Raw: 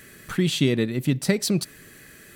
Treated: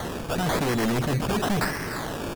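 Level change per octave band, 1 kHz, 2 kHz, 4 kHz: +16.5 dB, +3.5 dB, -3.5 dB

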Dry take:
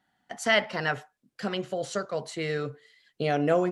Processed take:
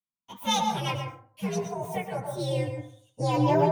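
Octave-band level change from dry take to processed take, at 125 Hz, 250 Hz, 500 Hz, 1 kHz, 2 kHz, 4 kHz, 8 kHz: +7.0 dB, +2.0 dB, -1.0 dB, +5.0 dB, -9.5 dB, +0.5 dB, +3.5 dB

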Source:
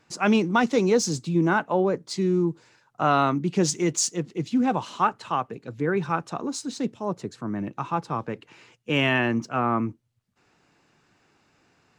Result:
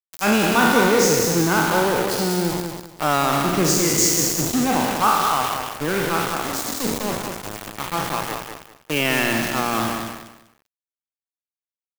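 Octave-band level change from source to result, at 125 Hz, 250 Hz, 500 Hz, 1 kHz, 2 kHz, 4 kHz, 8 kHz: +2.0 dB, +2.0 dB, +4.0 dB, +5.0 dB, +7.0 dB, +9.0 dB, +10.0 dB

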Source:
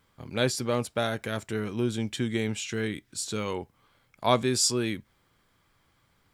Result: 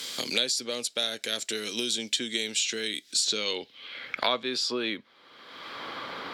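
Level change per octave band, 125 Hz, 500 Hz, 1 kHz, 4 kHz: -20.0 dB, -4.5 dB, -3.5 dB, +7.5 dB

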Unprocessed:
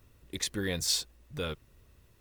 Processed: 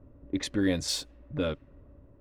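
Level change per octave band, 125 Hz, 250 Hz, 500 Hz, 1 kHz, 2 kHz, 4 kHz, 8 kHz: +3.0 dB, +10.0 dB, +5.0 dB, +2.0 dB, +0.5 dB, -2.0 dB, -4.0 dB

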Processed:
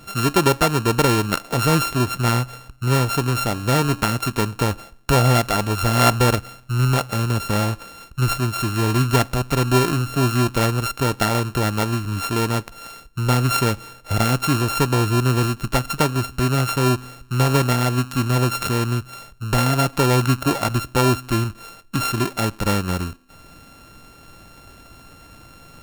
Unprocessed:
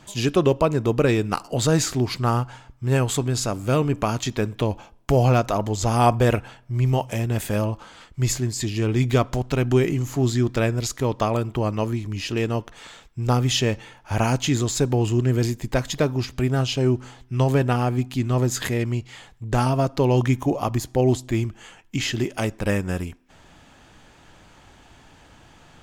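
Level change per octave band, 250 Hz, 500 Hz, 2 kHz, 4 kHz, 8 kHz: +1.5 dB, -0.5 dB, +6.5 dB, +5.0 dB, +2.5 dB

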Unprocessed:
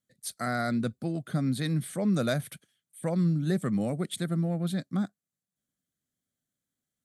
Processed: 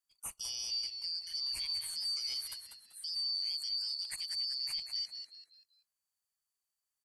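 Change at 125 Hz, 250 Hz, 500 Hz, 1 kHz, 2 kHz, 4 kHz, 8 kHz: under -40 dB, under -40 dB, under -35 dB, under -20 dB, -15.5 dB, +11.0 dB, 0.0 dB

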